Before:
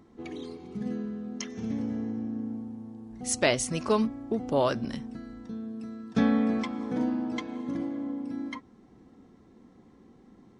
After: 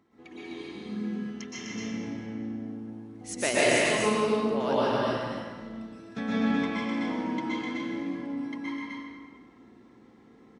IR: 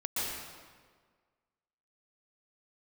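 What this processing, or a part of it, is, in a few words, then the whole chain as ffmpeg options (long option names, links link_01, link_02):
stadium PA: -filter_complex "[0:a]highpass=frequency=120:poles=1,equalizer=frequency=2100:width_type=o:width=1.8:gain=6.5,aecho=1:1:151.6|253.6:0.562|0.708[link_01];[1:a]atrim=start_sample=2205[link_02];[link_01][link_02]afir=irnorm=-1:irlink=0,asettb=1/sr,asplit=3[link_03][link_04][link_05];[link_03]atrim=end=3.294[link_06];[link_04]atrim=start=3.29:end=3.83,asetpts=PTS-STARTPTS,afade=type=in:duration=0.004:curve=qsin,afade=type=out:start_time=0.536:duration=0.004:curve=qsin,equalizer=frequency=370:width_type=o:width=1.5:gain=6[link_07];[link_05]atrim=start=3.826[link_08];[link_06][link_07]acrossfade=duration=0.004:curve1=hsin:curve2=qsin[link_09];[link_09][link_08]acrossfade=duration=0.004:curve1=qsin:curve2=hsin,volume=-8dB"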